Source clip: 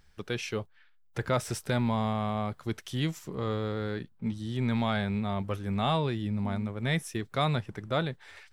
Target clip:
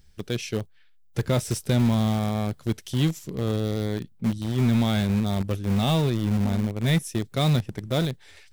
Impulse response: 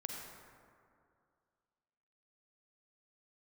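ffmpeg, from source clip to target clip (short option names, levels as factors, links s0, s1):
-filter_complex "[0:a]equalizer=f=1200:w=0.6:g=-12.5,asplit=2[s0][s1];[s1]acrusher=bits=4:mix=0:aa=0.000001,volume=0.282[s2];[s0][s2]amix=inputs=2:normalize=0,volume=2.11"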